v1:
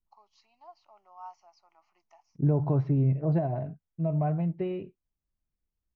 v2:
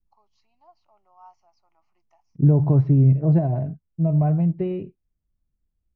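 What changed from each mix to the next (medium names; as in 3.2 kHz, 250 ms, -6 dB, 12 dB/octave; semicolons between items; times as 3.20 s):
first voice -6.0 dB; master: add bass shelf 370 Hz +10.5 dB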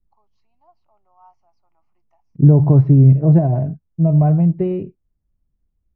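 second voice +6.0 dB; master: add treble shelf 2.7 kHz -10.5 dB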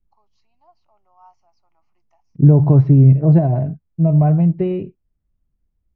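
master: add treble shelf 2.7 kHz +10.5 dB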